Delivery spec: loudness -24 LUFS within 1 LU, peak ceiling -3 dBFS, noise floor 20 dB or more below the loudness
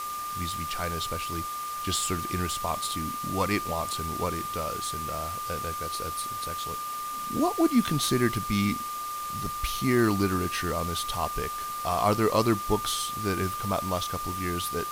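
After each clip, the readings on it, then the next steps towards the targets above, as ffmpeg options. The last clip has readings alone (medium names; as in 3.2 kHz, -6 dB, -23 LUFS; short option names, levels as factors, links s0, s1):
steady tone 1.2 kHz; tone level -32 dBFS; noise floor -34 dBFS; noise floor target -49 dBFS; loudness -28.5 LUFS; peak level -10.5 dBFS; loudness target -24.0 LUFS
-> -af "bandreject=f=1200:w=30"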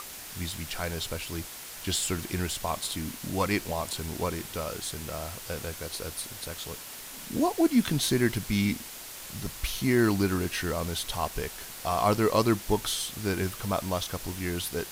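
steady tone not found; noise floor -43 dBFS; noise floor target -50 dBFS
-> -af "afftdn=nr=7:nf=-43"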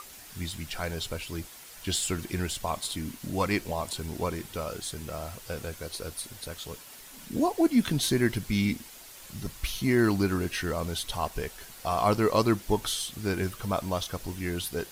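noise floor -48 dBFS; noise floor target -50 dBFS
-> -af "afftdn=nr=6:nf=-48"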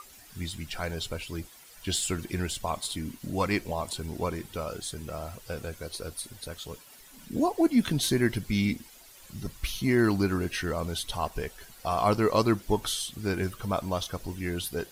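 noise floor -52 dBFS; loudness -30.0 LUFS; peak level -11.0 dBFS; loudness target -24.0 LUFS
-> -af "volume=2"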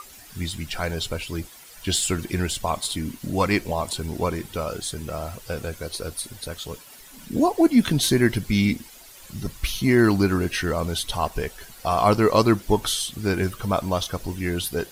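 loudness -24.0 LUFS; peak level -5.0 dBFS; noise floor -46 dBFS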